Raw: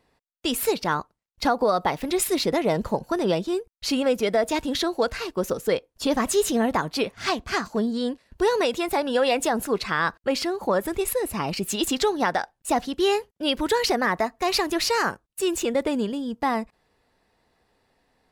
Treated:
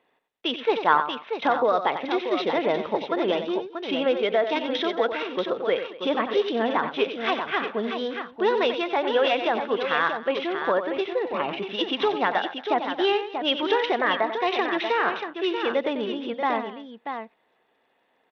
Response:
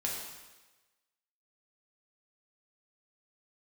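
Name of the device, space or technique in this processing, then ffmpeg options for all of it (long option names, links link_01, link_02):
Bluetooth headset: -filter_complex "[0:a]bass=frequency=250:gain=-9,treble=frequency=4000:gain=6,aecho=1:1:92|225|635:0.335|0.106|0.422,asettb=1/sr,asplit=3[link_01][link_02][link_03];[link_01]atrim=end=0.564[link_04];[link_02]atrim=start=0.56:end=1.47,asetpts=PTS-STARTPTS,afade=type=in:duration=0.004:curve=qsin,afade=type=out:start_time=0.906:duration=0.004:curve=qsin,adynamicequalizer=threshold=0.0141:dfrequency=1000:dqfactor=0.84:tfrequency=1000:tqfactor=0.84:attack=5:release=100:ratio=0.375:range=3.5:mode=boostabove:tftype=bell[link_05];[link_03]atrim=start=1.466[link_06];[link_04][link_05]acrossfade=duration=0.004:curve1=hsin:curve2=qsin[link_07];[link_07][link_06]acrossfade=duration=0.004:curve1=qsin:curve2=hsin,highpass=190,aresample=8000,aresample=44100" -ar 32000 -c:a sbc -b:a 64k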